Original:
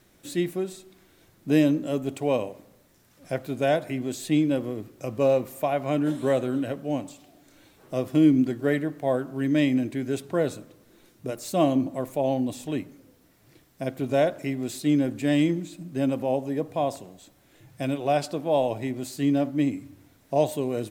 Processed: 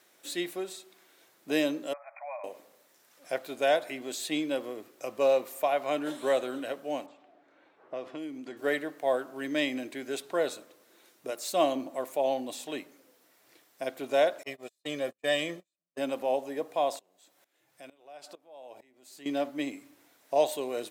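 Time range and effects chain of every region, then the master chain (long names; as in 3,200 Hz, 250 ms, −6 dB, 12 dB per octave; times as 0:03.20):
0:01.93–0:02.44: linear-phase brick-wall band-pass 560–2,500 Hz + downward compressor 2 to 1, threshold −40 dBFS
0:07.06–0:08.57: low-pass that shuts in the quiet parts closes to 1,600 Hz, open at −14.5 dBFS + downward compressor 4 to 1, threshold −28 dBFS
0:14.43–0:15.98: noise gate −29 dBFS, range −44 dB + comb filter 1.7 ms, depth 62%
0:16.99–0:19.26: downward compressor 2 to 1, threshold −45 dBFS + tremolo with a ramp in dB swelling 2.2 Hz, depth 19 dB
whole clip: high-pass filter 510 Hz 12 dB per octave; dynamic equaliser 3,900 Hz, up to +4 dB, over −54 dBFS, Q 2.7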